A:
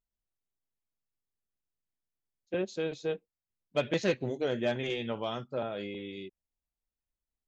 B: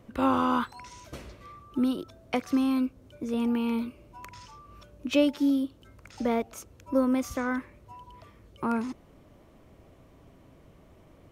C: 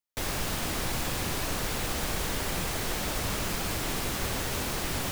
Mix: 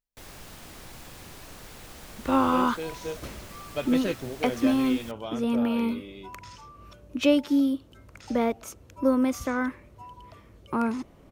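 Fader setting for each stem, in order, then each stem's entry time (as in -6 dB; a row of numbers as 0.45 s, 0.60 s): -2.0 dB, +2.0 dB, -14.0 dB; 0.00 s, 2.10 s, 0.00 s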